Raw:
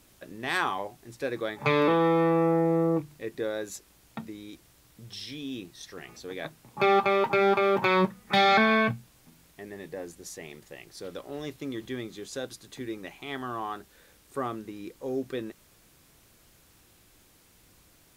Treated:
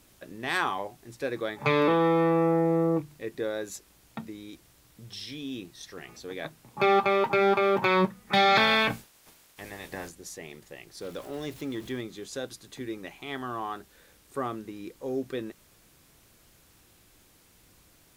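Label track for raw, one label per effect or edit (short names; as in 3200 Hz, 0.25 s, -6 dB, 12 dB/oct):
8.550000	10.090000	spectral limiter ceiling under each frame's peak by 19 dB
11.010000	12.010000	zero-crossing step of -45.5 dBFS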